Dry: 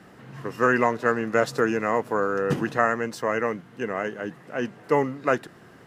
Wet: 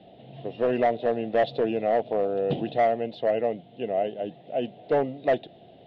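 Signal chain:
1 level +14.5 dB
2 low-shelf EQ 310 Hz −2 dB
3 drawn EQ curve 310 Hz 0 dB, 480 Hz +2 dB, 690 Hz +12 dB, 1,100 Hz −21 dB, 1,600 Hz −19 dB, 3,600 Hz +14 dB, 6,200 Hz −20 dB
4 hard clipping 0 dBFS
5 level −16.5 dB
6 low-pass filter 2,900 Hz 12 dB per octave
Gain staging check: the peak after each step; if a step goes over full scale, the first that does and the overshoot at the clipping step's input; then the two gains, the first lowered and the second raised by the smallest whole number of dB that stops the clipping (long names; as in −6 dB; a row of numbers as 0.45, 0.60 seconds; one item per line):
+7.5, +7.0, +9.5, 0.0, −16.5, −16.0 dBFS
step 1, 9.5 dB
step 1 +4.5 dB, step 5 −6.5 dB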